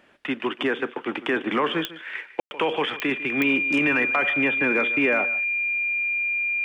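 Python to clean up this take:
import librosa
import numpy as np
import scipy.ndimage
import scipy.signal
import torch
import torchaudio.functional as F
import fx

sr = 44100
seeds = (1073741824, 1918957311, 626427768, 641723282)

y = fx.fix_declick_ar(x, sr, threshold=10.0)
y = fx.notch(y, sr, hz=2400.0, q=30.0)
y = fx.fix_ambience(y, sr, seeds[0], print_start_s=0.0, print_end_s=0.5, start_s=2.4, end_s=2.51)
y = fx.fix_echo_inverse(y, sr, delay_ms=150, level_db=-16.5)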